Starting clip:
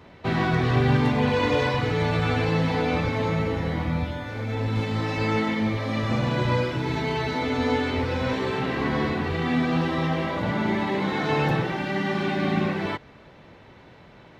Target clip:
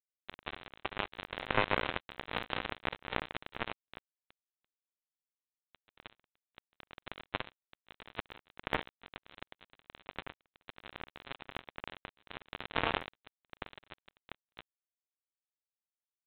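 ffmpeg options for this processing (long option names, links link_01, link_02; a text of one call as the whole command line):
ffmpeg -i in.wav -filter_complex "[0:a]asetrate=45938,aresample=44100,aecho=1:1:44|45|66|84|317|713:0.178|0.282|0.376|0.316|0.133|0.398,afftfilt=real='re*between(b*sr/4096,260,2000)':imag='im*between(b*sr/4096,260,2000)':win_size=4096:overlap=0.75,asplit=2[link_01][link_02];[link_02]acompressor=threshold=-37dB:ratio=12,volume=-0.5dB[link_03];[link_01][link_03]amix=inputs=2:normalize=0,acrusher=bits=4:mode=log:mix=0:aa=0.000001,atempo=0.85,acrossover=split=580|1500[link_04][link_05][link_06];[link_04]acompressor=threshold=-36dB:ratio=4[link_07];[link_06]acompressor=threshold=-48dB:ratio=4[link_08];[link_07][link_05][link_08]amix=inputs=3:normalize=0,aresample=8000,acrusher=bits=2:mix=0:aa=0.5,aresample=44100,volume=6.5dB" out.wav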